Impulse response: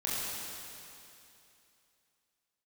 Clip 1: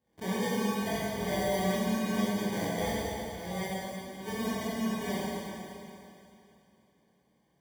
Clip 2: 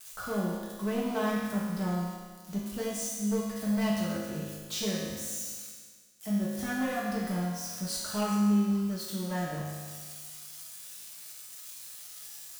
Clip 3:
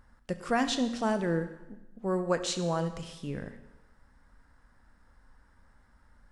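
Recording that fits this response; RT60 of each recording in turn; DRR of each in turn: 1; 2.8 s, 1.6 s, 1.0 s; -8.0 dB, -6.5 dB, 9.5 dB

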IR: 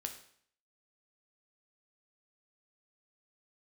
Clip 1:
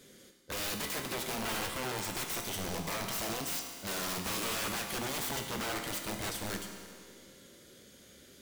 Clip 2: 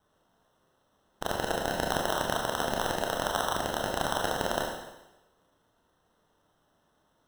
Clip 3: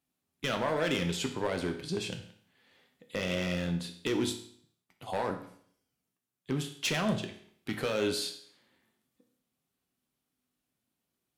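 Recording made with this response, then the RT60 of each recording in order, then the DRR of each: 3; 2.1 s, 1.0 s, 0.60 s; 3.0 dB, -1.5 dB, 4.5 dB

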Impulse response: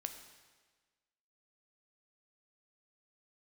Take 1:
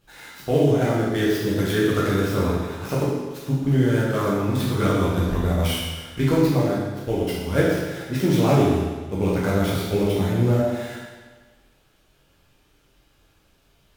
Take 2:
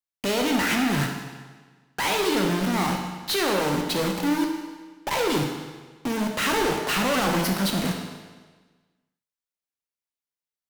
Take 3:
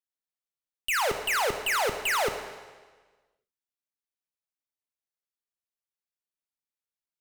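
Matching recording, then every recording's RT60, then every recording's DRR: 3; 1.4 s, 1.4 s, 1.4 s; -7.0 dB, 1.5 dB, 6.5 dB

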